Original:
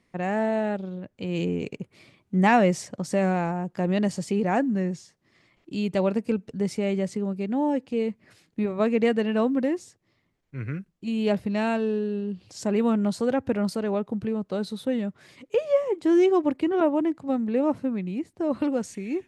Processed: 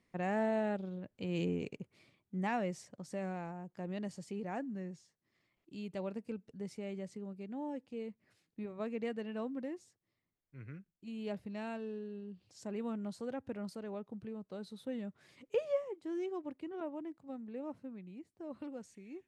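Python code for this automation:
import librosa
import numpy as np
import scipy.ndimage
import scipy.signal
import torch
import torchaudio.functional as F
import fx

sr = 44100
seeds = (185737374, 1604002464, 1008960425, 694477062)

y = fx.gain(x, sr, db=fx.line((1.51, -8.0), (2.48, -16.5), (14.6, -16.5), (15.64, -9.0), (16.0, -19.5)))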